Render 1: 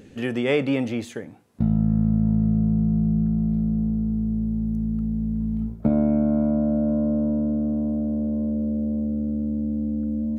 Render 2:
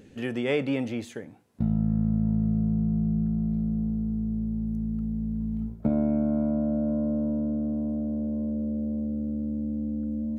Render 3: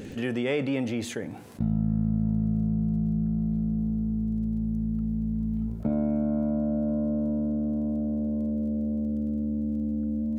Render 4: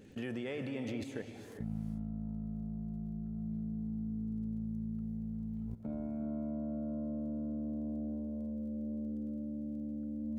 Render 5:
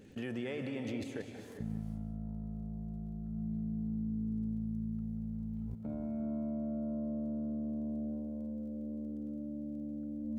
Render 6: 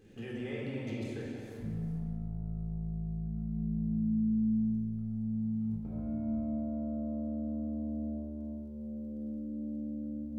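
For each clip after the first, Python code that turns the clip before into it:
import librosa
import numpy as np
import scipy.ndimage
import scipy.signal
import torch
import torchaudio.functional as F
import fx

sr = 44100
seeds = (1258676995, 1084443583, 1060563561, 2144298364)

y1 = fx.notch(x, sr, hz=1200.0, q=24.0)
y1 = y1 * librosa.db_to_amplitude(-4.5)
y2 = fx.dmg_crackle(y1, sr, seeds[0], per_s=17.0, level_db=-51.0)
y2 = fx.env_flatten(y2, sr, amount_pct=50)
y2 = y2 * librosa.db_to_amplitude(-3.0)
y3 = fx.level_steps(y2, sr, step_db=17)
y3 = fx.rev_gated(y3, sr, seeds[1], gate_ms=430, shape='rising', drr_db=6.5)
y3 = y3 * librosa.db_to_amplitude(-5.0)
y4 = y3 + 10.0 ** (-11.0 / 20.0) * np.pad(y3, (int(183 * sr / 1000.0), 0))[:len(y3)]
y5 = fx.room_shoebox(y4, sr, seeds[2], volume_m3=1700.0, walls='mixed', distance_m=3.8)
y5 = y5 * librosa.db_to_amplitude(-7.0)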